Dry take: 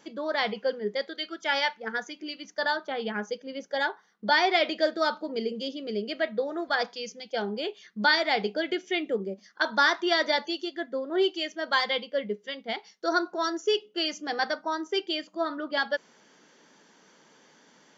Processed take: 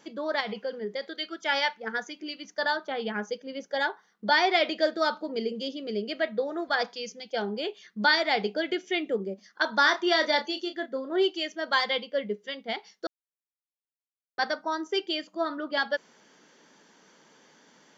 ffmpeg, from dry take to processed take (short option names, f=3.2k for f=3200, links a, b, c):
-filter_complex "[0:a]asettb=1/sr,asplit=3[a][b][c];[a]atrim=end=0.404[d];[b]atrim=start=0.4:end=1.03,asetpts=PTS-STARTPTS,afade=t=in:d=0.004:c=qsin,afade=t=out:st=0.626:d=0.004:c=qsin,acompressor=threshold=-28dB:ratio=5:attack=3.2:release=140:knee=1:detection=peak[e];[c]atrim=start=1.026[f];[d][e]acrossfade=d=0.004:c1=hsin:c2=qsin[g];[g][f]acrossfade=d=0.004:c1=qsin:c2=hsin,asettb=1/sr,asplit=3[h][i][j];[h]atrim=end=9.824[k];[i]atrim=start=9.82:end=11.13,asetpts=PTS-STARTPTS,afade=t=in:d=0.004:c=qsin,afade=t=out:st=1.306:d=0.004:c=qsin,asplit=2[l][m];[m]adelay=31,volume=-9dB[n];[l][n]amix=inputs=2:normalize=0,atrim=end_sample=57771[o];[j]atrim=start=11.126[p];[k][o]acrossfade=d=0.004:c1=hsin:c2=qsin[q];[q][p]acrossfade=d=0.004:c1=qsin:c2=hsin,asplit=3[r][s][t];[r]atrim=end=13.07,asetpts=PTS-STARTPTS,afade=t=out:st=13.066:d=0.004:c=hsin[u];[s]atrim=start=13.07:end=14.38,asetpts=PTS-STARTPTS,volume=0[v];[t]atrim=start=14.38,asetpts=PTS-STARTPTS,afade=t=in:d=0.004:c=hsin[w];[u][v][w]concat=n=3:v=0:a=1"